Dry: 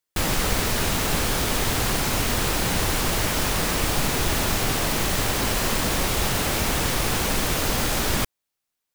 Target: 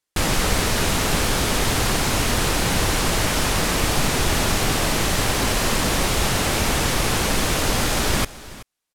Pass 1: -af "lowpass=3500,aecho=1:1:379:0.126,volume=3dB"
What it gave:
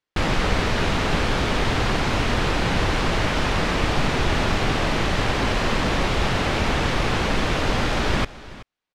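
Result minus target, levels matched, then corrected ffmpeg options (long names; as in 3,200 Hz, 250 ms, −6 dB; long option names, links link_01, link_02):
8,000 Hz band −11.5 dB
-af "lowpass=12000,aecho=1:1:379:0.126,volume=3dB"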